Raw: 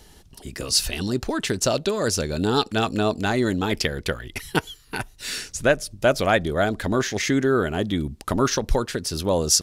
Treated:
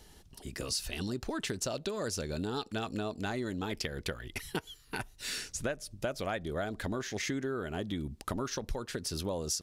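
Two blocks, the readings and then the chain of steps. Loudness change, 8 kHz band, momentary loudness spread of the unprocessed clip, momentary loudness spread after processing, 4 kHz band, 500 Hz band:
-13.0 dB, -12.5 dB, 9 LU, 5 LU, -12.5 dB, -14.0 dB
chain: compression, threshold -25 dBFS, peak gain reduction 12 dB; trim -6.5 dB

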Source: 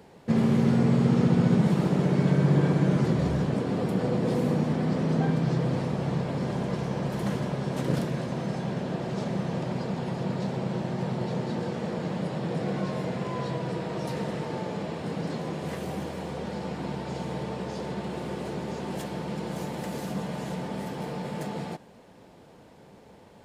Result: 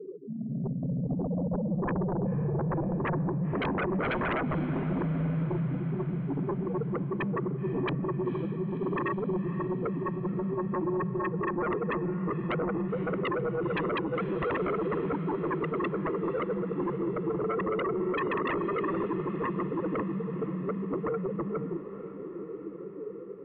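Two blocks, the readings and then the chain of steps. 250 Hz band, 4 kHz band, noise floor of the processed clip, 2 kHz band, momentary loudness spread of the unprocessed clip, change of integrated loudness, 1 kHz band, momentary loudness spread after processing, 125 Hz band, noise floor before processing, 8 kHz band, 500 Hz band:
-3.5 dB, -7.5 dB, -40 dBFS, +2.0 dB, 12 LU, -3.0 dB, +1.0 dB, 4 LU, -5.5 dB, -52 dBFS, under -30 dB, +0.5 dB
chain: spectral contrast enhancement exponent 3.2; elliptic band-stop 370–3100 Hz, stop band 40 dB; spectral gate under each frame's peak -30 dB strong; high-pass 290 Hz 24 dB/octave; level rider gain up to 4.5 dB; static phaser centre 560 Hz, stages 4; sine folder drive 16 dB, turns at -29 dBFS; echo that smears into a reverb 508 ms, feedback 67%, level -13 dB; trim +2.5 dB

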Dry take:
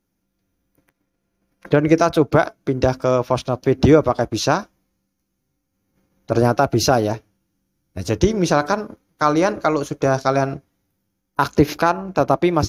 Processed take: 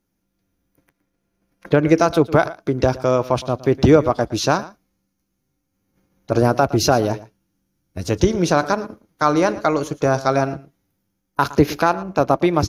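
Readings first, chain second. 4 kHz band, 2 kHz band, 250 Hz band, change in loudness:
0.0 dB, 0.0 dB, 0.0 dB, 0.0 dB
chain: delay 114 ms -18 dB

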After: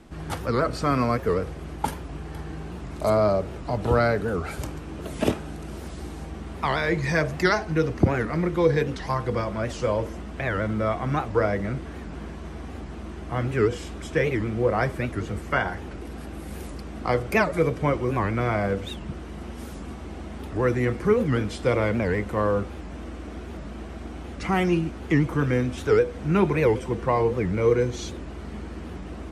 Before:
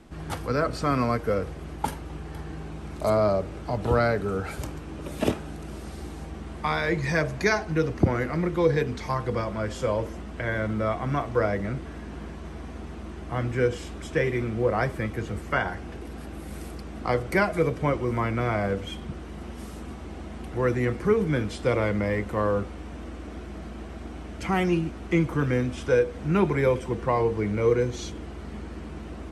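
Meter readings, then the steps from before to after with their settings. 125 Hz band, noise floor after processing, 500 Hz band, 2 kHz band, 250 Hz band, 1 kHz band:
+1.5 dB, -38 dBFS, +1.5 dB, +1.0 dB, +1.5 dB, +1.5 dB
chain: warped record 78 rpm, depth 250 cents; trim +1.5 dB

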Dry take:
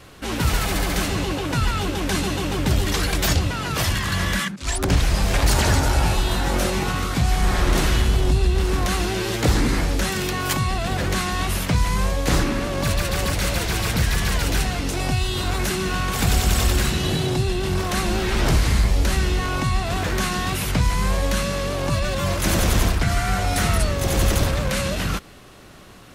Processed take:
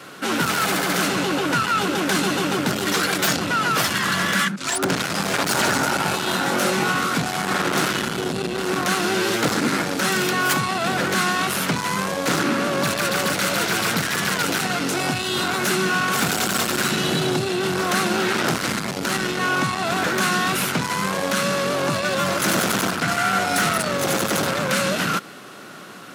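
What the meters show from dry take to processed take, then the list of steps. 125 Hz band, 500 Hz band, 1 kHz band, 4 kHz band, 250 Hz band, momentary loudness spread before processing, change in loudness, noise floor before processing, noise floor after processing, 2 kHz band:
-8.0 dB, +2.5 dB, +4.5 dB, +2.5 dB, +1.5 dB, 4 LU, +1.0 dB, -31 dBFS, -29 dBFS, +5.0 dB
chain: peaking EQ 1.4 kHz +8.5 dB 0.29 oct; saturation -19 dBFS, distortion -11 dB; high-pass 160 Hz 24 dB/octave; trim +5.5 dB

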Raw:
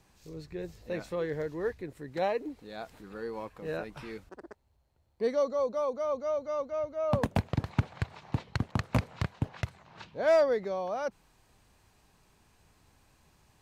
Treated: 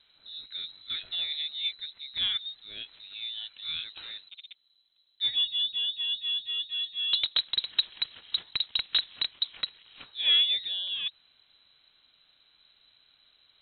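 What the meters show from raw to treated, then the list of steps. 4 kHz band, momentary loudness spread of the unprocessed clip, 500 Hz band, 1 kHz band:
+25.5 dB, 15 LU, under -30 dB, -17.0 dB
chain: frequency inversion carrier 4 kHz

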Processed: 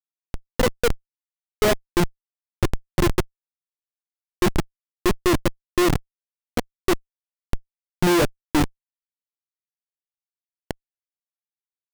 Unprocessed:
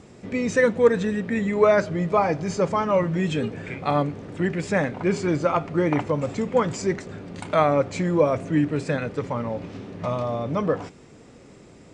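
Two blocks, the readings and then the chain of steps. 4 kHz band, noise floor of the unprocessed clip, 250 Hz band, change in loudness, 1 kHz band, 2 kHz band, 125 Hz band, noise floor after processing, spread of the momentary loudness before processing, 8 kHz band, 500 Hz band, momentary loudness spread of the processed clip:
+7.5 dB, -48 dBFS, -1.5 dB, -0.5 dB, -4.0 dB, -1.0 dB, -2.5 dB, under -85 dBFS, 10 LU, +6.0 dB, -5.0 dB, 16 LU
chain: small resonant body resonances 350/2000/2800 Hz, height 16 dB, ringing for 90 ms; Chebyshev shaper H 2 -36 dB, 5 -11 dB, 6 -13 dB, 7 -32 dB, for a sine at 0 dBFS; Schmitt trigger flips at -8.5 dBFS; trim -3 dB

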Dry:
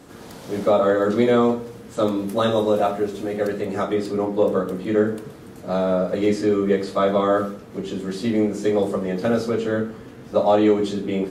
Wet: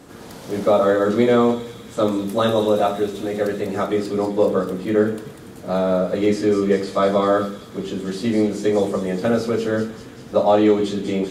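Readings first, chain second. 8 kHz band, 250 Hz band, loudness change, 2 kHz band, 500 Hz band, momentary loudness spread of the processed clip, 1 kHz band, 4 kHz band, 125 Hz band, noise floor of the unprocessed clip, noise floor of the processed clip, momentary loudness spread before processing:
no reading, +1.5 dB, +1.5 dB, +1.5 dB, +1.5 dB, 12 LU, +1.5 dB, +2.5 dB, +1.5 dB, -41 dBFS, -39 dBFS, 12 LU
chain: feedback echo behind a high-pass 195 ms, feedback 68%, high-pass 3.9 kHz, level -5 dB; trim +1.5 dB

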